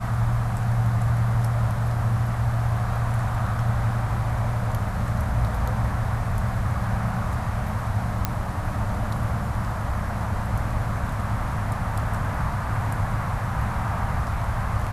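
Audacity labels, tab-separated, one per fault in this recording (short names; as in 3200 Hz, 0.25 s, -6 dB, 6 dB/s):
8.250000	8.250000	pop -8 dBFS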